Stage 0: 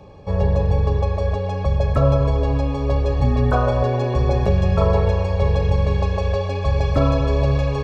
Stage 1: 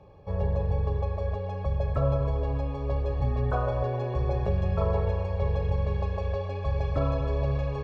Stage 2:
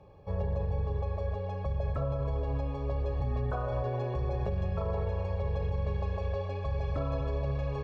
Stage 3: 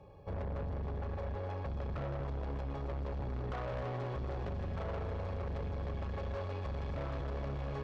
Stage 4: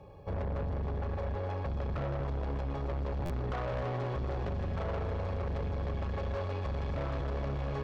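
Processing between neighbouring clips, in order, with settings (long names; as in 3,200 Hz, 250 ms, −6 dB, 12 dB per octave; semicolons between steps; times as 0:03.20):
low-pass filter 2,200 Hz 6 dB per octave; parametric band 240 Hz −7 dB 0.54 octaves; level −8.5 dB
brickwall limiter −21 dBFS, peak gain reduction 6.5 dB; level −2.5 dB
tube saturation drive 37 dB, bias 0.5; delay with a high-pass on its return 273 ms, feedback 75%, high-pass 3,900 Hz, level −6.5 dB; level +1.5 dB
buffer that repeats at 0:03.25, samples 512, times 3; level +4 dB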